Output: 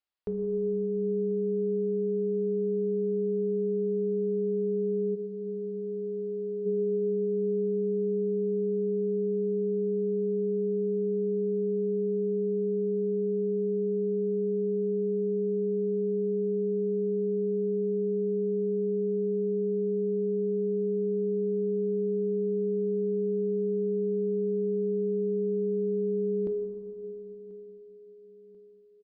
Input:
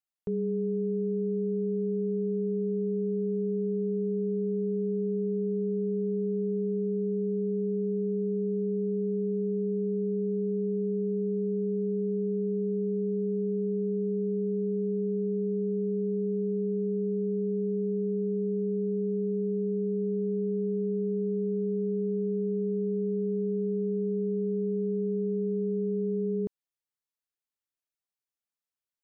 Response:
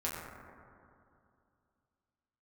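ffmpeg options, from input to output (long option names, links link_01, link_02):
-filter_complex "[0:a]equalizer=frequency=150:width=1.9:gain=-14,aecho=1:1:1038|2076|3114|4152:0.0841|0.0421|0.021|0.0105,aresample=11025,aresample=44100,asplit=3[link_01][link_02][link_03];[link_01]afade=type=out:start_time=5.14:duration=0.02[link_04];[link_02]aemphasis=mode=production:type=riaa,afade=type=in:start_time=5.14:duration=0.02,afade=type=out:start_time=6.65:duration=0.02[link_05];[link_03]afade=type=in:start_time=6.65:duration=0.02[link_06];[link_04][link_05][link_06]amix=inputs=3:normalize=0,asplit=2[link_07][link_08];[1:a]atrim=start_sample=2205,asetrate=34398,aresample=44100[link_09];[link_08][link_09]afir=irnorm=-1:irlink=0,volume=-7.5dB[link_10];[link_07][link_10]amix=inputs=2:normalize=0"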